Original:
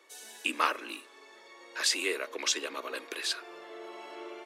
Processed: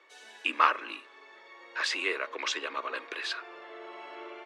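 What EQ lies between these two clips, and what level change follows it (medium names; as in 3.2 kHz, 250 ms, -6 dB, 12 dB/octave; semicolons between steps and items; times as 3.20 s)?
low-pass 2.2 kHz 12 dB/octave; tilt EQ +3 dB/octave; dynamic bell 1.1 kHz, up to +4 dB, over -47 dBFS, Q 2.4; +2.0 dB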